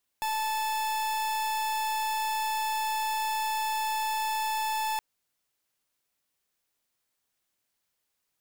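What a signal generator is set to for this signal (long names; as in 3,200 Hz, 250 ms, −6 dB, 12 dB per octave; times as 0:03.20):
pulse wave 873 Hz, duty 43% −29.5 dBFS 4.77 s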